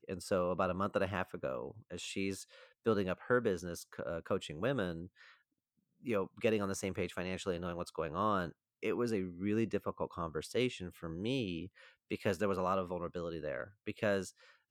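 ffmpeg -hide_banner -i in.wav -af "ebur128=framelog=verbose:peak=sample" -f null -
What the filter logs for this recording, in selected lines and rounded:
Integrated loudness:
  I:         -37.3 LUFS
  Threshold: -47.6 LUFS
Loudness range:
  LRA:         1.7 LU
  Threshold: -57.8 LUFS
  LRA low:   -38.7 LUFS
  LRA high:  -37.0 LUFS
Sample peak:
  Peak:      -17.4 dBFS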